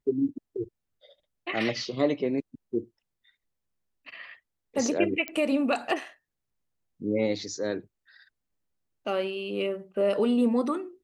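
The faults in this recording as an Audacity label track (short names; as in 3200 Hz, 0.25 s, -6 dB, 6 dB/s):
5.280000	5.280000	pop -16 dBFS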